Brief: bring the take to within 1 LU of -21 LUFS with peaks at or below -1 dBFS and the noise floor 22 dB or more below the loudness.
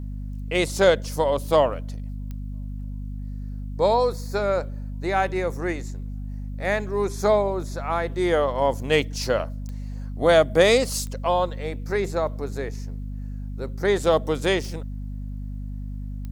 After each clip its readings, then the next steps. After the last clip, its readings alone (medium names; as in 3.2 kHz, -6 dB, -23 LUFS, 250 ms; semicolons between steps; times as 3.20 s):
clicks found 5; hum 50 Hz; highest harmonic 250 Hz; hum level -29 dBFS; loudness -23.5 LUFS; peak level -4.5 dBFS; loudness target -21.0 LUFS
-> de-click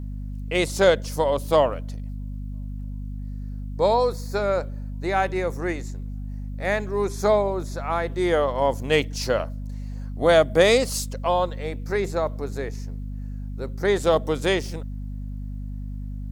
clicks found 0; hum 50 Hz; highest harmonic 250 Hz; hum level -29 dBFS
-> de-hum 50 Hz, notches 5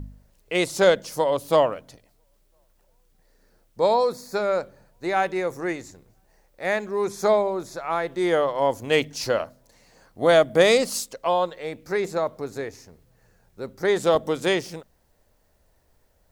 hum not found; loudness -23.5 LUFS; peak level -4.0 dBFS; loudness target -21.0 LUFS
-> trim +2.5 dB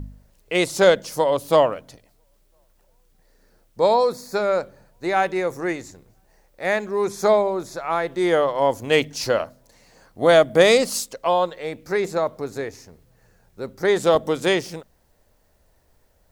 loudness -21.0 LUFS; peak level -1.5 dBFS; noise floor -61 dBFS